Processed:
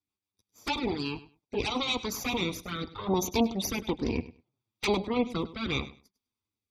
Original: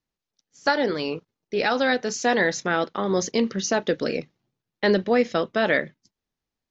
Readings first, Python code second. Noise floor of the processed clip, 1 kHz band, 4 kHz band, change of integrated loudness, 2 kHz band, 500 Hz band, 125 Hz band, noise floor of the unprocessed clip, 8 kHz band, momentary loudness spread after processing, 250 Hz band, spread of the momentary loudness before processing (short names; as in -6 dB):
under -85 dBFS, -8.0 dB, -2.0 dB, -7.0 dB, -11.5 dB, -10.0 dB, -2.0 dB, under -85 dBFS, n/a, 9 LU, -4.5 dB, 8 LU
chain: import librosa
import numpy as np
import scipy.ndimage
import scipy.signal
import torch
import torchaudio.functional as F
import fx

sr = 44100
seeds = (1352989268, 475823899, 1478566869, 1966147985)

y = fx.lower_of_two(x, sr, delay_ms=0.85)
y = fx.spec_gate(y, sr, threshold_db=-30, keep='strong')
y = fx.rotary_switch(y, sr, hz=6.3, then_hz=0.7, switch_at_s=0.82)
y = scipy.signal.sosfilt(scipy.signal.butter(2, 71.0, 'highpass', fs=sr, output='sos'), y)
y = fx.env_flanger(y, sr, rest_ms=10.3, full_db=-26.0)
y = fx.graphic_eq_15(y, sr, hz=(160, 630, 1600, 6300), db=(-10, -3, -10, -5))
y = fx.echo_feedback(y, sr, ms=101, feedback_pct=18, wet_db=-16.5)
y = y * librosa.db_to_amplitude(5.0)